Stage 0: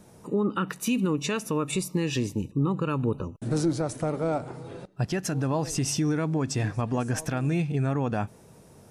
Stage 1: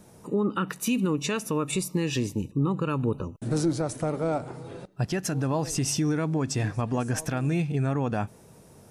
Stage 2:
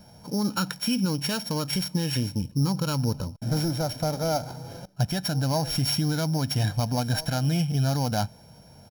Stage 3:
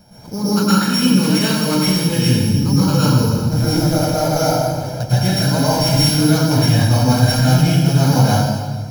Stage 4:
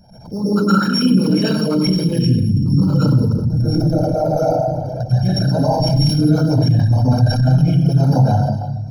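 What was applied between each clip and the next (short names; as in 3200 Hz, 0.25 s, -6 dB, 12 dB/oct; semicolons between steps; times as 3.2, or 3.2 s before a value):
high shelf 9400 Hz +3.5 dB
sample sorter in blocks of 8 samples; comb 1.3 ms, depth 66%
reverb RT60 1.5 s, pre-delay 0.105 s, DRR -10 dB; gain +1.5 dB
formant sharpening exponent 2; mismatched tape noise reduction encoder only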